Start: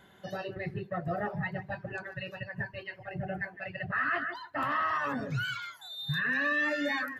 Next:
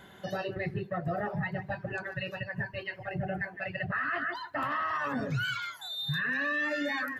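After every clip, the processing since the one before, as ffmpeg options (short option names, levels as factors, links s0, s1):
-filter_complex "[0:a]asplit=2[s0][s1];[s1]acompressor=threshold=0.00708:ratio=6,volume=0.75[s2];[s0][s2]amix=inputs=2:normalize=0,alimiter=level_in=1.06:limit=0.0631:level=0:latency=1:release=83,volume=0.944,volume=1.12"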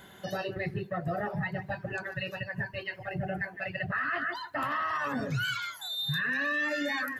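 -af "highshelf=f=5400:g=8"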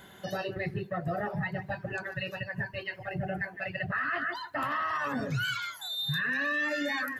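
-af anull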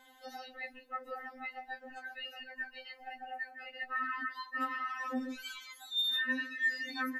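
-af "flanger=delay=2.2:depth=3.4:regen=-53:speed=0.88:shape=sinusoidal,afftfilt=real='re*3.46*eq(mod(b,12),0)':imag='im*3.46*eq(mod(b,12),0)':win_size=2048:overlap=0.75"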